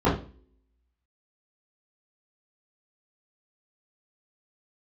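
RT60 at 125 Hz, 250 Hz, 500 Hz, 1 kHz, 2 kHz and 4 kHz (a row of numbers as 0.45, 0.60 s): 0.40, 0.60, 0.45, 0.35, 0.35, 0.35 s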